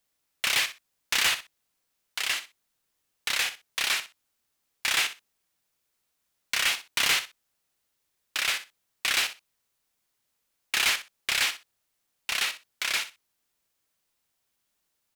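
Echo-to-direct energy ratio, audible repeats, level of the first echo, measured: −12.5 dB, 2, −12.5 dB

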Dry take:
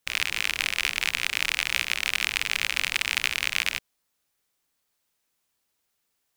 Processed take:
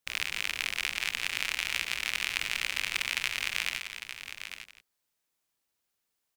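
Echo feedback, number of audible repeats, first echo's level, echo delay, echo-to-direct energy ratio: repeats not evenly spaced, 3, −11.5 dB, 169 ms, −7.0 dB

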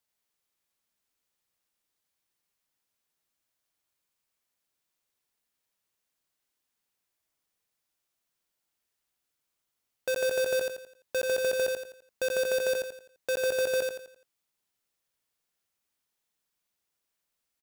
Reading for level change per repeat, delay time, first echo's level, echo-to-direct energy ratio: −8.0 dB, 85 ms, −3.5 dB, −3.0 dB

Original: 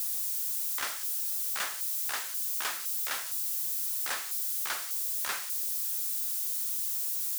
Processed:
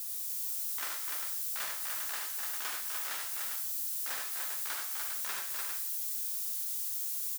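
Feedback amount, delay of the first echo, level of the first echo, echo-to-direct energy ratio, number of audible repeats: repeats not evenly spaced, 74 ms, −5.5 dB, 1.0 dB, 4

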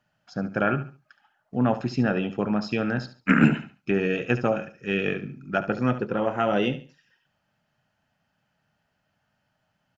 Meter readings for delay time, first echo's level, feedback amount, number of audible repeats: 71 ms, −13.0 dB, 28%, 2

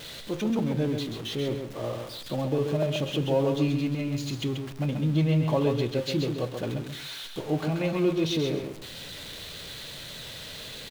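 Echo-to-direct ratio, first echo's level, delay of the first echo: −6.0 dB, −6.0 dB, 133 ms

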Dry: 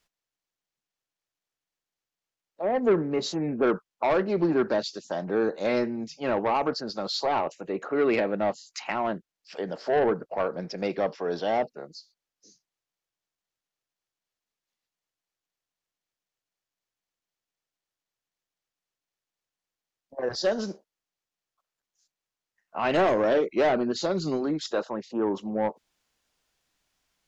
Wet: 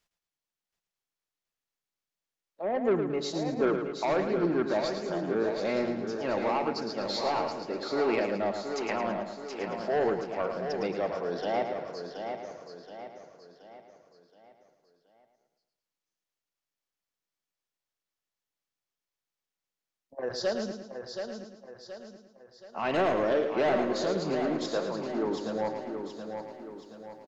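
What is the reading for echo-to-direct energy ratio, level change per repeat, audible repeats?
−3.0 dB, repeats not evenly spaced, 14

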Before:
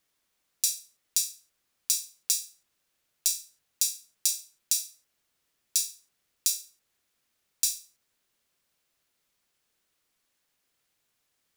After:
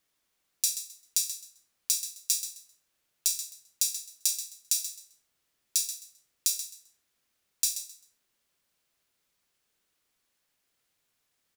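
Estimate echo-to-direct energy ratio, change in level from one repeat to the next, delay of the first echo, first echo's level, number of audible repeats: −11.0 dB, −13.0 dB, 131 ms, −11.0 dB, 2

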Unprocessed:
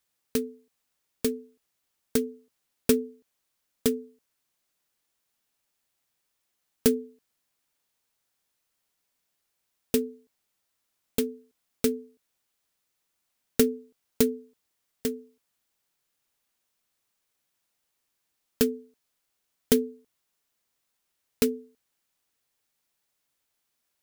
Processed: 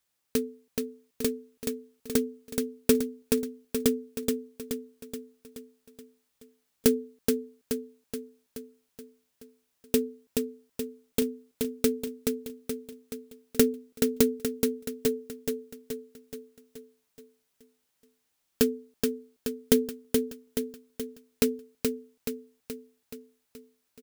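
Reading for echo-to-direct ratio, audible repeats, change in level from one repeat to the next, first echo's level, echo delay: −2.5 dB, 6, −5.0 dB, −4.0 dB, 426 ms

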